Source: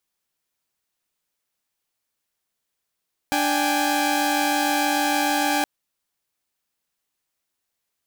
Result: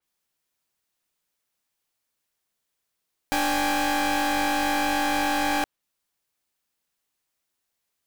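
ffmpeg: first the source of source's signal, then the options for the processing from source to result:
-f lavfi -i "aevalsrc='0.0841*((2*mod(293.66*t,1)-1)+(2*mod(783.99*t,1)-1)+(2*mod(830.61*t,1)-1))':duration=2.32:sample_rate=44100"
-af "aeval=exprs='clip(val(0),-1,0.0473)':channel_layout=same,adynamicequalizer=threshold=0.00794:dfrequency=4200:dqfactor=0.7:tfrequency=4200:tqfactor=0.7:attack=5:release=100:ratio=0.375:range=2:mode=cutabove:tftype=highshelf"

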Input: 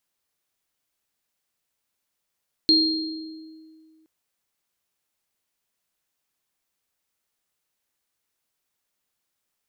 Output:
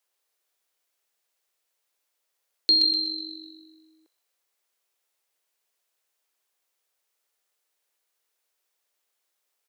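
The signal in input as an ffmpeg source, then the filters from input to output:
-f lavfi -i "aevalsrc='0.119*pow(10,-3*t/2.13)*sin(2*PI*317*t)+0.224*pow(10,-3*t/1.1)*sin(2*PI*4220*t)':duration=1.37:sample_rate=44100"
-filter_complex "[0:a]lowshelf=frequency=300:width_type=q:width=1.5:gain=-12.5,acrossover=split=200|790|1300[link_01][link_02][link_03][link_04];[link_02]acompressor=threshold=-41dB:ratio=6[link_05];[link_04]asplit=7[link_06][link_07][link_08][link_09][link_10][link_11][link_12];[link_07]adelay=124,afreqshift=-47,volume=-5dB[link_13];[link_08]adelay=248,afreqshift=-94,volume=-11.6dB[link_14];[link_09]adelay=372,afreqshift=-141,volume=-18.1dB[link_15];[link_10]adelay=496,afreqshift=-188,volume=-24.7dB[link_16];[link_11]adelay=620,afreqshift=-235,volume=-31.2dB[link_17];[link_12]adelay=744,afreqshift=-282,volume=-37.8dB[link_18];[link_06][link_13][link_14][link_15][link_16][link_17][link_18]amix=inputs=7:normalize=0[link_19];[link_01][link_05][link_03][link_19]amix=inputs=4:normalize=0"

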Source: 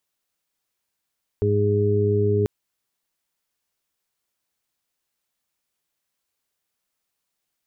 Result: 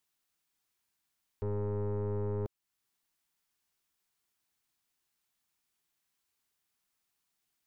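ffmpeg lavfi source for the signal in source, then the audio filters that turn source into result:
-f lavfi -i "aevalsrc='0.0944*sin(2*PI*103*t)+0.0376*sin(2*PI*206*t)+0.0299*sin(2*PI*309*t)+0.1*sin(2*PI*412*t)':duration=1.04:sample_rate=44100"
-af "equalizer=frequency=540:width_type=o:width=0.3:gain=-11,alimiter=limit=-23dB:level=0:latency=1:release=440,aeval=exprs='(tanh(31.6*val(0)+0.5)-tanh(0.5))/31.6':channel_layout=same"

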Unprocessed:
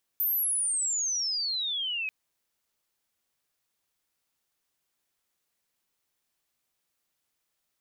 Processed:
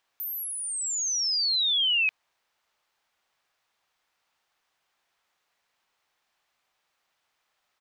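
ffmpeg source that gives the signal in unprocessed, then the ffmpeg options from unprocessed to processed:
-f lavfi -i "aevalsrc='pow(10,(-24-5*t/1.89)/20)*sin(2*PI*14000*1.89/log(2500/14000)*(exp(log(2500/14000)*t/1.89)-1))':duration=1.89:sample_rate=44100"
-af "firequalizer=gain_entry='entry(260,0);entry(770,12);entry(10000,-6)':delay=0.05:min_phase=1"

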